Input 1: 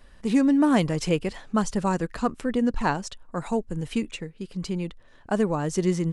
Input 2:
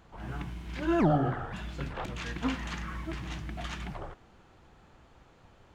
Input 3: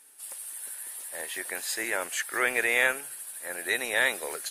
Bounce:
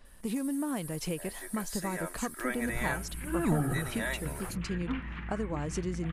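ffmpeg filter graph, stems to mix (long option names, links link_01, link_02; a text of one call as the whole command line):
ffmpeg -i stem1.wav -i stem2.wav -i stem3.wav -filter_complex "[0:a]acompressor=threshold=-27dB:ratio=6,volume=-4dB[link_01];[1:a]lowpass=frequency=2500:width=0.5412,lowpass=frequency=2500:width=1.3066,equalizer=frequency=660:width=0.87:gain=-10,adelay=2450,volume=-1dB[link_02];[2:a]equalizer=frequency=2800:width=2.1:gain=-12,aecho=1:1:3.1:0.65,adelay=50,volume=-9dB[link_03];[link_01][link_02][link_03]amix=inputs=3:normalize=0" out.wav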